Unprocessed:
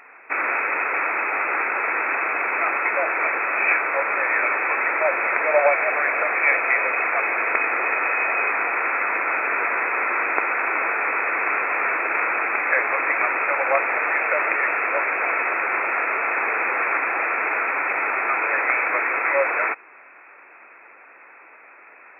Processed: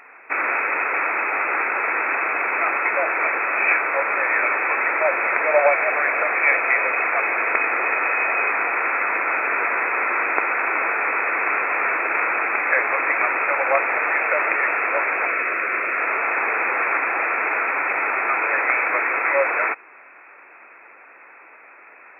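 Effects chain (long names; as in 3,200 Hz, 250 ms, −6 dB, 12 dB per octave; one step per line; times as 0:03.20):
0:15.27–0:16.01: parametric band 850 Hz −11.5 dB 0.44 octaves
level +1 dB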